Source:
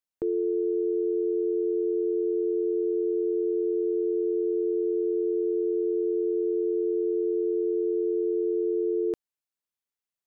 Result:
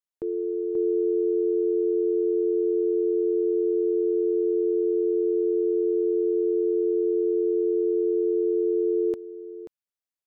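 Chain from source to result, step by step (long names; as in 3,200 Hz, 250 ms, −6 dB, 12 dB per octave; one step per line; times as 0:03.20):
single-tap delay 534 ms −7 dB
expander for the loud parts 1.5 to 1, over −33 dBFS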